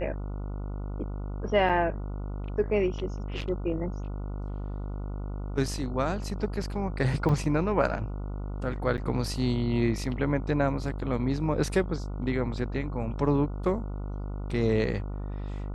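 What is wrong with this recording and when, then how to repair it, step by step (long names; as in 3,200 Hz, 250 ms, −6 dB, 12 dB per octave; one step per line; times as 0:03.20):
mains buzz 50 Hz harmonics 29 −34 dBFS
0:01.69–0:01.70: drop-out 5.8 ms
0:03.41: drop-out 4.8 ms
0:07.29: drop-out 2.9 ms
0:08.97–0:08.98: drop-out 9.1 ms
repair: hum removal 50 Hz, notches 29
repair the gap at 0:01.69, 5.8 ms
repair the gap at 0:03.41, 4.8 ms
repair the gap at 0:07.29, 2.9 ms
repair the gap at 0:08.97, 9.1 ms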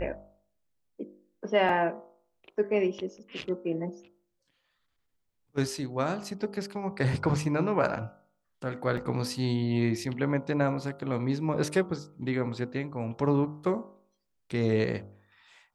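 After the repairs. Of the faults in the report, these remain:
none of them is left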